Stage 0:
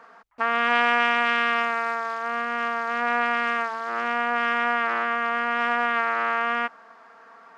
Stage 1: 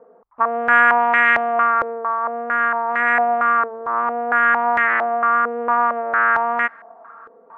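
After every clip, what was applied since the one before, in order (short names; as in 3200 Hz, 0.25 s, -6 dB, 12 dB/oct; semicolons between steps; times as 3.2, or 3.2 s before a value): stepped low-pass 4.4 Hz 490–1900 Hz; gain +1 dB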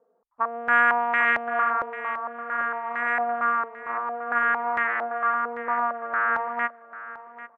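feedback echo 0.793 s, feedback 30%, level -10 dB; upward expander 1.5:1, over -36 dBFS; gain -5.5 dB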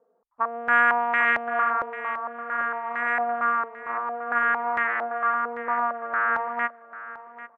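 nothing audible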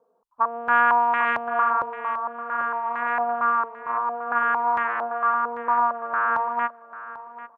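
thirty-one-band EQ 125 Hz +7 dB, 1000 Hz +9 dB, 2000 Hz -10 dB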